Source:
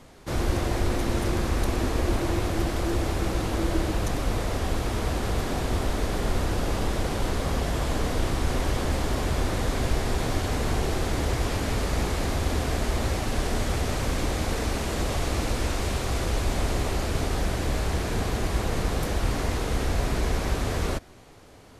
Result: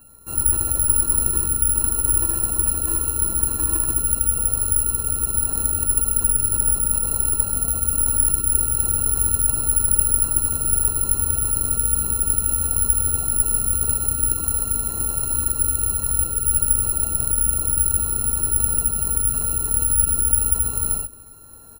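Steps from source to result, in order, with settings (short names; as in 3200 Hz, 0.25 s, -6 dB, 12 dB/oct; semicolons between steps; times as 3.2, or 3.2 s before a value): sample sorter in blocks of 32 samples; spectral gate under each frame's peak -20 dB strong; low shelf 71 Hz +10 dB; de-hum 57.68 Hz, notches 11; reverse; upward compressor, threshold -36 dBFS; reverse; tube stage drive 12 dB, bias 0.55; on a send: echo 80 ms -3 dB; on the sum: careless resampling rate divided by 4×, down filtered, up zero stuff; gain -5 dB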